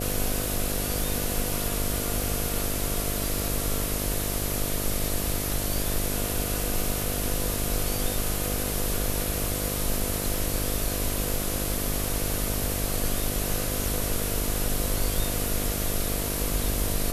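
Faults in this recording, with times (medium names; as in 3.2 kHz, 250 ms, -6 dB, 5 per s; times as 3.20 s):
buzz 50 Hz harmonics 14 -32 dBFS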